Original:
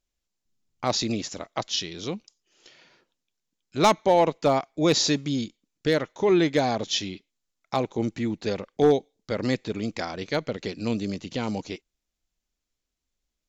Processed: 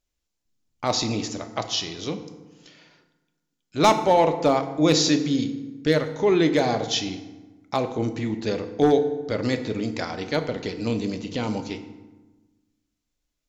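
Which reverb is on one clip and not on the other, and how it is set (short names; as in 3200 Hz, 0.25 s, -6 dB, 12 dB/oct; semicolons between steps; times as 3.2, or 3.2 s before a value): FDN reverb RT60 1.2 s, low-frequency decay 1.3×, high-frequency decay 0.6×, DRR 7 dB; gain +1 dB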